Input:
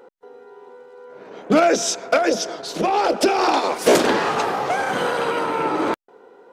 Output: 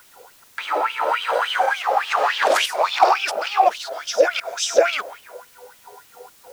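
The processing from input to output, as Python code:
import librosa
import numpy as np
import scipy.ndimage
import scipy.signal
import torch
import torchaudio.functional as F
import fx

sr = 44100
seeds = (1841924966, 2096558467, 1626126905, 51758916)

y = np.flip(x).copy()
y = fx.filter_lfo_highpass(y, sr, shape='sine', hz=3.5, low_hz=550.0, high_hz=3200.0, q=6.2)
y = fx.quant_dither(y, sr, seeds[0], bits=8, dither='triangular')
y = F.gain(torch.from_numpy(y), -4.0).numpy()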